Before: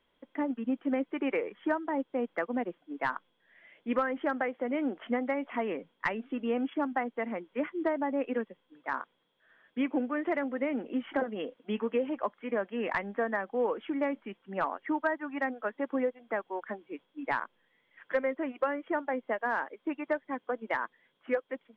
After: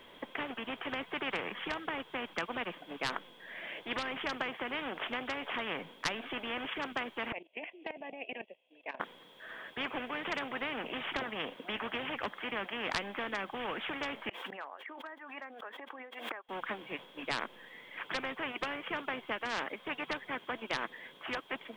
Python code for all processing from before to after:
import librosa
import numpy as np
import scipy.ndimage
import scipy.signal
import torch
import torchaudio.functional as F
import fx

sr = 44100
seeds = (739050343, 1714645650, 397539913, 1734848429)

y = fx.chain(x, sr, fx.double_bandpass(hz=1300.0, octaves=2.0),
    fx.level_steps(step_db=16), at=(7.32, 9.0))
y = fx.chain(y, sr, fx.gate_flip(shuts_db=-36.0, range_db=-27),
    fx.highpass(hz=590.0, slope=12),
    fx.pre_swell(db_per_s=61.0), at=(14.29, 16.49))
y = fx.low_shelf(y, sr, hz=130.0, db=-8.0)
y = fx.notch(y, sr, hz=1400.0, q=15.0)
y = fx.spectral_comp(y, sr, ratio=4.0)